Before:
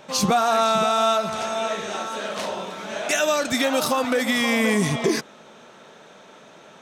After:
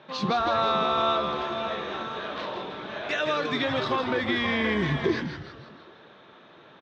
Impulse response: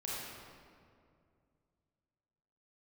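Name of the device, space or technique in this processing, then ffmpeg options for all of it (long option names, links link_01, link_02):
frequency-shifting delay pedal into a guitar cabinet: -filter_complex "[0:a]asplit=7[link_01][link_02][link_03][link_04][link_05][link_06][link_07];[link_02]adelay=162,afreqshift=-150,volume=-7dB[link_08];[link_03]adelay=324,afreqshift=-300,volume=-13dB[link_09];[link_04]adelay=486,afreqshift=-450,volume=-19dB[link_10];[link_05]adelay=648,afreqshift=-600,volume=-25.1dB[link_11];[link_06]adelay=810,afreqshift=-750,volume=-31.1dB[link_12];[link_07]adelay=972,afreqshift=-900,volume=-37.1dB[link_13];[link_01][link_08][link_09][link_10][link_11][link_12][link_13]amix=inputs=7:normalize=0,highpass=98,equalizer=frequency=140:width_type=q:width=4:gain=7,equalizer=frequency=350:width_type=q:width=4:gain=6,equalizer=frequency=1100:width_type=q:width=4:gain=5,equalizer=frequency=1700:width_type=q:width=4:gain=5,equalizer=frequency=3800:width_type=q:width=4:gain=6,lowpass=frequency=4000:width=0.5412,lowpass=frequency=4000:width=1.3066,volume=-7.5dB"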